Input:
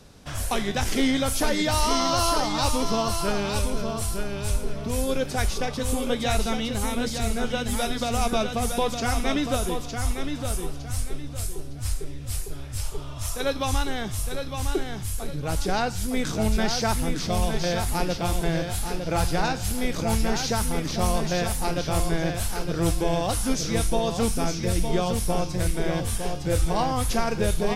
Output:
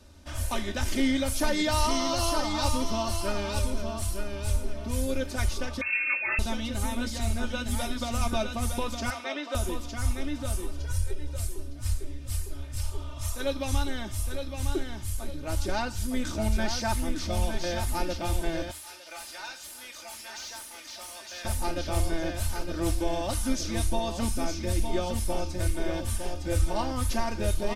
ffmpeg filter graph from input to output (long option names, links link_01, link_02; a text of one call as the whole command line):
ffmpeg -i in.wav -filter_complex "[0:a]asettb=1/sr,asplit=3[link_01][link_02][link_03];[link_01]atrim=end=5.814[link_04];[link_02]atrim=start=5.81:end=6.39,asetpts=PTS-STARTPTS,afade=type=in:duration=0.004:curve=qsin,afade=type=out:start_time=0.576:duration=0.004:curve=qsin,equalizer=frequency=920:width=1.9:gain=7.5,lowpass=frequency=2300:width_type=q:width=0.5098,lowpass=frequency=2300:width_type=q:width=0.6013,lowpass=frequency=2300:width_type=q:width=0.9,lowpass=frequency=2300:width_type=q:width=2.563,afreqshift=-2700[link_05];[link_03]atrim=start=6.386[link_06];[link_04][link_05]acrossfade=duration=0.004:curve1=hsin:curve2=qsin[link_07];[link_07][link_06]acrossfade=duration=0.004:curve1=qsin:curve2=hsin,asettb=1/sr,asplit=3[link_08][link_09][link_10];[link_08]atrim=end=9.104[link_11];[link_09]atrim=start=9.1:end=9.55,asetpts=PTS-STARTPTS,afade=type=in:duration=0.004:curve=qsin,afade=type=out:start_time=0.446:duration=0.004:curve=qsin,highpass=frequency=190:width=0.5412,highpass=frequency=190:width=1.3066,acrossover=split=380 5500:gain=0.0631 1 0.141[link_12][link_13][link_14];[link_12][link_13][link_14]amix=inputs=3:normalize=0[link_15];[link_10]atrim=start=9.546[link_16];[link_11][link_15]acrossfade=duration=0.004:curve1=hsin:curve2=qsin[link_17];[link_17][link_16]acrossfade=duration=0.004:curve1=qsin:curve2=hsin,asettb=1/sr,asplit=3[link_18][link_19][link_20];[link_18]atrim=end=10.784[link_21];[link_19]atrim=start=10.78:end=11.36,asetpts=PTS-STARTPTS,afade=type=in:duration=0.004:curve=qsin,afade=type=out:start_time=0.576:duration=0.004:curve=qsin,equalizer=frequency=410:width=4.8:gain=6.5,aecho=1:1:2.1:0.95,atrim=end_sample=25578,acompressor=threshold=-24dB:ratio=2:attack=3.2:release=140:knee=1:detection=peak[link_22];[link_20]atrim=start=11.356[link_23];[link_21][link_22]acrossfade=duration=0.004:curve1=hsin:curve2=qsin[link_24];[link_24][link_23]acrossfade=duration=0.004:curve1=qsin:curve2=hsin,asettb=1/sr,asplit=3[link_25][link_26][link_27];[link_25]atrim=end=18.714[link_28];[link_26]atrim=start=18.71:end=21.45,asetpts=PTS-STARTPTS,afade=type=in:duration=0.004:curve=qsin,afade=type=out:start_time=2.736:duration=0.004:curve=qsin,aderivative,asplit=2[link_29][link_30];[link_30]highpass=frequency=720:poles=1,volume=18dB,asoftclip=type=tanh:threshold=-18.5dB[link_31];[link_29][link_31]amix=inputs=2:normalize=0,lowpass=frequency=1700:poles=1,volume=-6dB,aecho=1:1:351:0.141,atrim=end_sample=120834[link_32];[link_27]atrim=start=21.446[link_33];[link_28][link_32]acrossfade=duration=0.004:curve1=hsin:curve2=qsin[link_34];[link_34][link_33]acrossfade=duration=0.004:curve1=qsin:curve2=hsin,equalizer=frequency=80:width_type=o:width=0.27:gain=13,aecho=1:1:3.3:0.73,volume=-6.5dB" out.wav